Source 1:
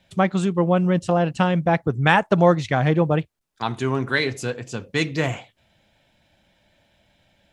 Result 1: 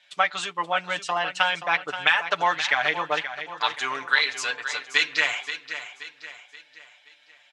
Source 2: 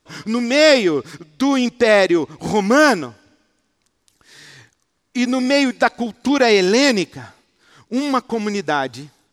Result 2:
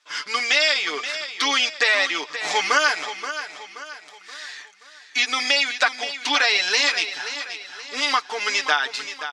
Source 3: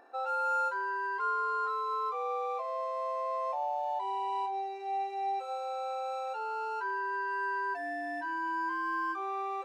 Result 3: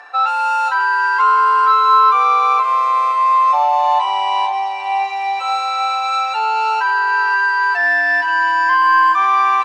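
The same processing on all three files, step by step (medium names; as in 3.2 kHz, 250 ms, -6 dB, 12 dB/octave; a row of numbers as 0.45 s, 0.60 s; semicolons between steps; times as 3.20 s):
high-pass 1.4 kHz 12 dB/octave; comb 6.8 ms, depth 72%; dynamic bell 3.7 kHz, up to +4 dB, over -35 dBFS, Q 0.75; compression 6:1, threshold -22 dBFS; distance through air 73 m; on a send: feedback delay 527 ms, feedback 43%, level -11 dB; on the sum: peak normalisation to -3 dBFS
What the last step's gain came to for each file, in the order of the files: +6.5 dB, +7.0 dB, +24.5 dB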